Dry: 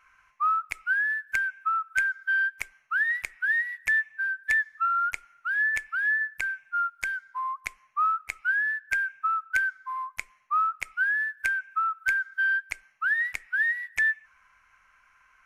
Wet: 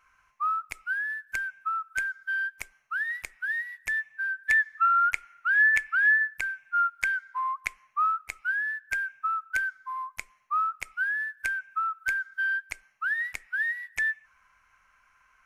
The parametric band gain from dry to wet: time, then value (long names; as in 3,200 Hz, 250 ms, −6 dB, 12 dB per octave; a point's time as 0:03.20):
parametric band 2,000 Hz 1.5 octaves
0:03.95 −5.5 dB
0:04.83 +5 dB
0:06.07 +5 dB
0:06.54 −3 dB
0:06.80 +4 dB
0:07.59 +4 dB
0:08.26 −3.5 dB